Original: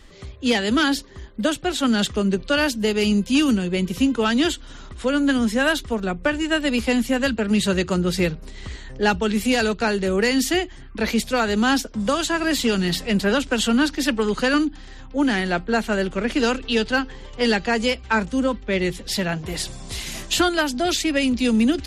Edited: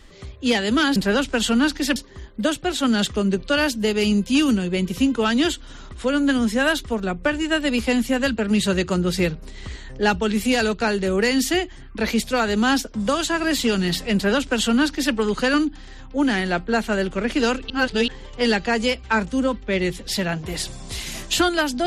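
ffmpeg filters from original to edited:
-filter_complex "[0:a]asplit=5[a][b][c][d][e];[a]atrim=end=0.962[f];[b]atrim=start=13.138:end=14.142[g];[c]atrim=start=0.958:end=16.702[h];[d]atrim=start=16.698:end=17.082,asetpts=PTS-STARTPTS,areverse[i];[e]atrim=start=17.078[j];[f][g]acrossfade=d=0.004:c1=hsin:c2=hsin[k];[k][h]acrossfade=d=0.004:c1=hsin:c2=hsin[l];[l][i]acrossfade=d=0.004:c1=hsin:c2=hsin[m];[m][j]acrossfade=d=0.004:c1=hsin:c2=hsin"

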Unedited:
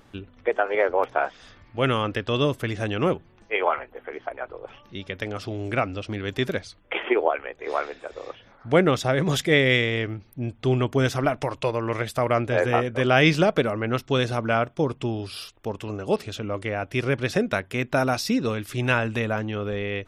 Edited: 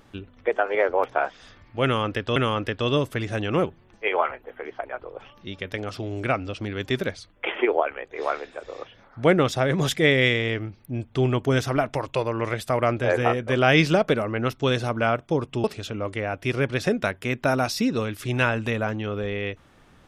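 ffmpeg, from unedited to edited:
-filter_complex "[0:a]asplit=3[a][b][c];[a]atrim=end=2.362[d];[b]atrim=start=1.838:end=15.122[e];[c]atrim=start=16.128[f];[d][e]acrossfade=d=0.004:c1=hsin:c2=hsin[g];[g][f]acrossfade=d=0.004:c1=hsin:c2=hsin"

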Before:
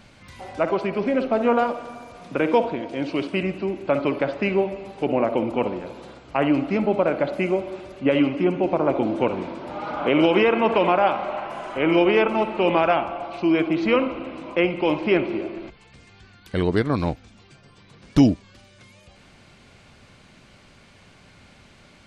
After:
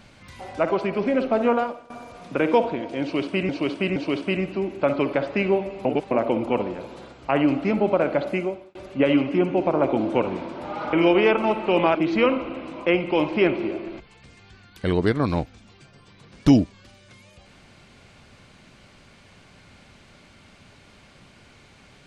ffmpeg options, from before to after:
-filter_complex "[0:a]asplit=9[a][b][c][d][e][f][g][h][i];[a]atrim=end=1.9,asetpts=PTS-STARTPTS,afade=t=out:st=1.45:d=0.45:silence=0.133352[j];[b]atrim=start=1.9:end=3.492,asetpts=PTS-STARTPTS,afade=t=in:d=0.004:c=hsin:silence=0.133352[k];[c]atrim=start=3.018:end=3.492[l];[d]atrim=start=3.018:end=4.912[m];[e]atrim=start=4.908:end=5.172,asetpts=PTS-STARTPTS,areverse[n];[f]atrim=start=5.168:end=7.81,asetpts=PTS-STARTPTS,afade=t=out:st=2.172:d=0.47[o];[g]atrim=start=7.81:end=9.992,asetpts=PTS-STARTPTS,afade=t=in:d=0.004:c=hsin[p];[h]atrim=start=11.838:end=12.862[q];[i]atrim=start=13.648[r];[j][k]concat=n=2:v=0:a=1[s];[s][l]acrossfade=d=0.004:c1=hsin:c2=hsin[t];[t][m]acrossfade=d=0.004:c1=hsin:c2=hsin[u];[u][n]acrossfade=d=0.004:c1=hsin:c2=hsin[v];[o][p]concat=n=2:v=0:a=1[w];[v][w]acrossfade=d=0.004:c1=hsin:c2=hsin[x];[x][q]acrossfade=d=0.004:c1=hsin:c2=hsin[y];[y][r]acrossfade=d=0.004:c1=hsin:c2=hsin"

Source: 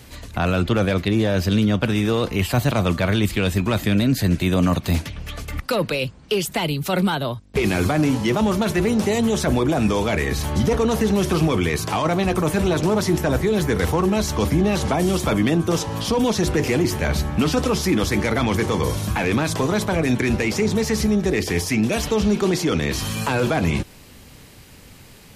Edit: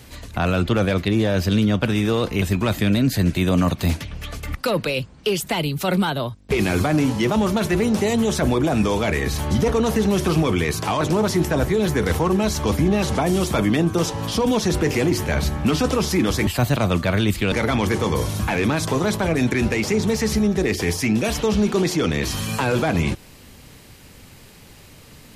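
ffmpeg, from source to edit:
-filter_complex "[0:a]asplit=5[a][b][c][d][e];[a]atrim=end=2.422[f];[b]atrim=start=3.468:end=12.062[g];[c]atrim=start=12.738:end=18.202[h];[d]atrim=start=2.418:end=3.472[i];[e]atrim=start=18.198[j];[f][g]acrossfade=d=0.004:c1=hsin:c2=hsin[k];[k][h]acrossfade=d=0.004:c1=hsin:c2=hsin[l];[l][i]acrossfade=d=0.004:c1=hsin:c2=hsin[m];[m][j]acrossfade=d=0.004:c1=hsin:c2=hsin"

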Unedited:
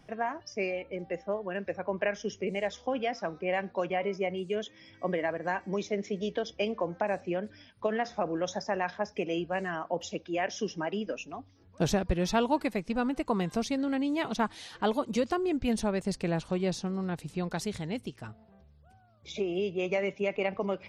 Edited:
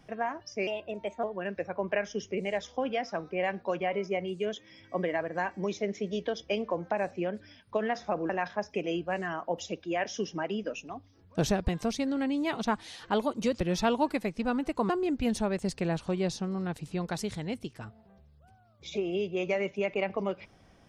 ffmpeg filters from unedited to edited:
-filter_complex "[0:a]asplit=7[a][b][c][d][e][f][g];[a]atrim=end=0.674[h];[b]atrim=start=0.67:end=1.33,asetpts=PTS-STARTPTS,asetrate=51597,aresample=44100[i];[c]atrim=start=1.326:end=8.392[j];[d]atrim=start=8.718:end=12.112[k];[e]atrim=start=13.398:end=15.322[l];[f]atrim=start=12.108:end=13.402[m];[g]atrim=start=15.318[n];[h][i]acrossfade=d=0.004:c1=hsin:c2=hsin[o];[o][j]acrossfade=d=0.004:c1=hsin:c2=hsin[p];[p][k]acrossfade=d=0.004:c1=hsin:c2=hsin[q];[q][l]acrossfade=d=0.004:c1=hsin:c2=hsin[r];[r][m]acrossfade=d=0.004:c1=hsin:c2=hsin[s];[s][n]acrossfade=d=0.004:c1=hsin:c2=hsin"

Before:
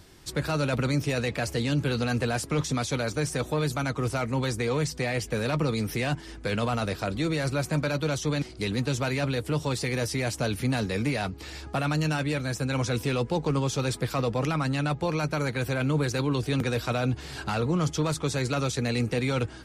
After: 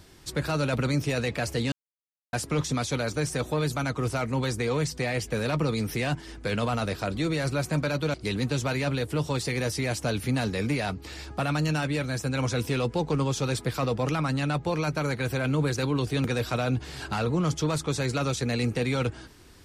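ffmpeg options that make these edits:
-filter_complex "[0:a]asplit=4[a][b][c][d];[a]atrim=end=1.72,asetpts=PTS-STARTPTS,afade=t=out:st=1.716:d=0.004:c=hsin[e];[b]atrim=start=1.72:end=2.33,asetpts=PTS-STARTPTS,volume=0[f];[c]atrim=start=2.33:end=8.142,asetpts=PTS-STARTPTS,afade=t=in:d=0.004:c=hsin[g];[d]atrim=start=8.498[h];[e][f][g]concat=n=3:v=0:a=1[i];[i][h]acrossfade=d=0.004:c1=hsin:c2=hsin"

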